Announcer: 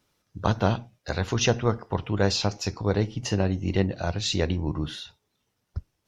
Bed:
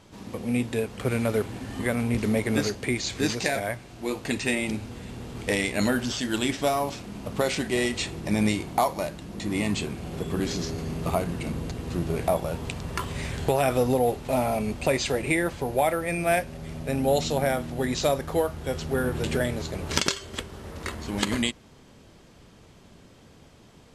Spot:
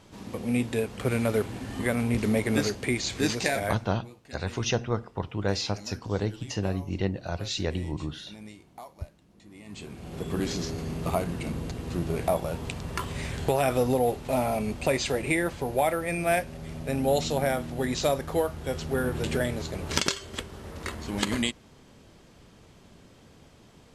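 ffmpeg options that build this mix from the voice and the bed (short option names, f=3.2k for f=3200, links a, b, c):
-filter_complex "[0:a]adelay=3250,volume=-4.5dB[a];[1:a]volume=19.5dB,afade=t=out:st=3.67:d=0.27:silence=0.0891251,afade=t=in:st=9.65:d=0.68:silence=0.1[b];[a][b]amix=inputs=2:normalize=0"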